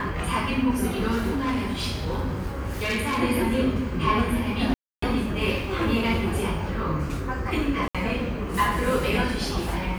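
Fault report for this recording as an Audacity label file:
1.360000	3.210000	clipped -22 dBFS
4.740000	5.020000	gap 0.284 s
7.880000	7.950000	gap 66 ms

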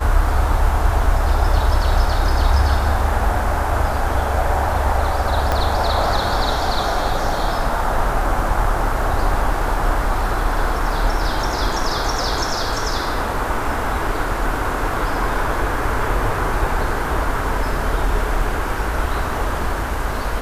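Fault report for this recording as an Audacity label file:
5.520000	5.520000	pop -6 dBFS

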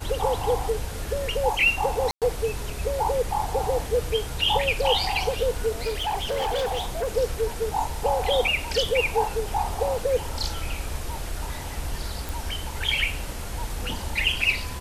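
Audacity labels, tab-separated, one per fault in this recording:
2.110000	2.220000	gap 0.107 s
5.840000	7.170000	clipped -22.5 dBFS
12.290000	12.290000	pop

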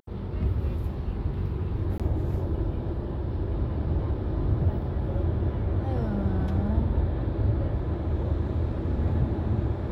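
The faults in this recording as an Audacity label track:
1.980000	2.000000	gap 17 ms

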